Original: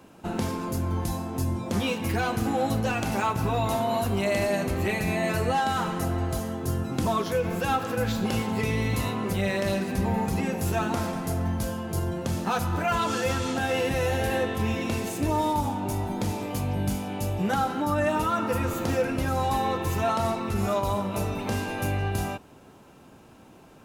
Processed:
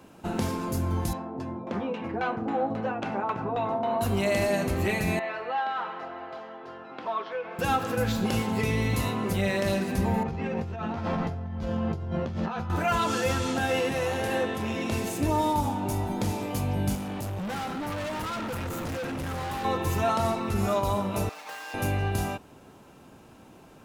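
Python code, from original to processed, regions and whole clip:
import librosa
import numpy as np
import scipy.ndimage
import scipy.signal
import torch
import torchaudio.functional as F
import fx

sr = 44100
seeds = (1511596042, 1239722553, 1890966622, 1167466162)

y = fx.chain(x, sr, fx.highpass(hz=140.0, slope=12),
    fx.low_shelf(hz=220.0, db=-7.5),
    fx.filter_lfo_lowpass(shape='saw_down', hz=3.7, low_hz=640.0, high_hz=3000.0, q=0.78), at=(1.13, 4.01))
y = fx.chain(y, sr, fx.bandpass_edges(low_hz=670.0, high_hz=6100.0),
    fx.air_absorb(metres=360.0), at=(5.19, 7.59))
y = fx.chain(y, sr, fx.air_absorb(metres=230.0),
    fx.doubler(ms=13.0, db=-3.5),
    fx.over_compress(threshold_db=-31.0, ratio=-1.0), at=(10.23, 12.7))
y = fx.chain(y, sr, fx.highpass(hz=120.0, slope=12),
    fx.peak_eq(hz=14000.0, db=-7.5, octaves=0.35),
    fx.transformer_sat(knee_hz=420.0), at=(13.79, 14.92))
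y = fx.chain(y, sr, fx.peak_eq(hz=140.0, db=5.5, octaves=0.93),
    fx.overload_stage(gain_db=31.0), at=(16.95, 19.65))
y = fx.chain(y, sr, fx.median_filter(points=15),
    fx.highpass(hz=1300.0, slope=12),
    fx.comb(ms=6.5, depth=0.86), at=(21.29, 21.74))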